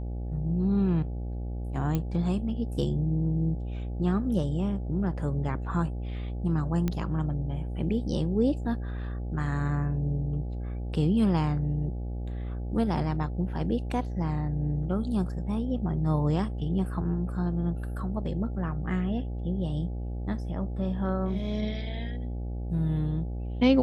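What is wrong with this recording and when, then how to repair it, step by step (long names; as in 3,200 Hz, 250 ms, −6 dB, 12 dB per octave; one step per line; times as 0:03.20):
mains buzz 60 Hz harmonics 14 −33 dBFS
0:01.95: click −16 dBFS
0:06.88: click −16 dBFS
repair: click removal
hum removal 60 Hz, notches 14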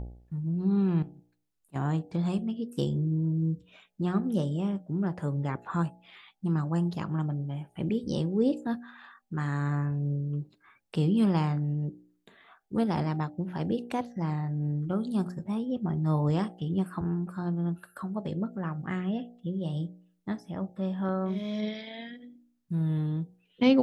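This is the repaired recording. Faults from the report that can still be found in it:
none of them is left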